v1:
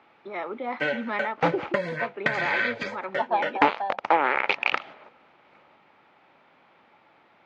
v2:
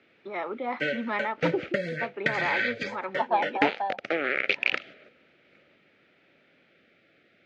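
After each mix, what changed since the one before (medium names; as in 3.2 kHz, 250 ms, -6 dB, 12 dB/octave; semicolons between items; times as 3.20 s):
background: add Butterworth band-stop 950 Hz, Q 0.98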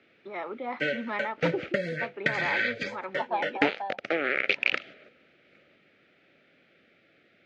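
first voice -3.0 dB; second voice -5.0 dB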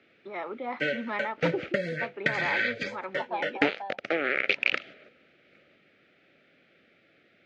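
second voice -3.5 dB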